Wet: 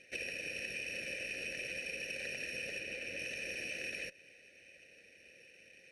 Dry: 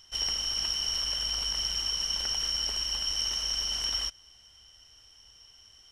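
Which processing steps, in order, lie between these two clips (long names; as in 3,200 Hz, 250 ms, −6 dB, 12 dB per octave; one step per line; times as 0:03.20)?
lower of the sound and its delayed copy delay 0.47 ms
formant filter e
downward compressor, threshold −55 dBFS, peak gain reduction 8.5 dB
0:02.79–0:03.19: high-shelf EQ 5,100 Hz −6.5 dB
level +16.5 dB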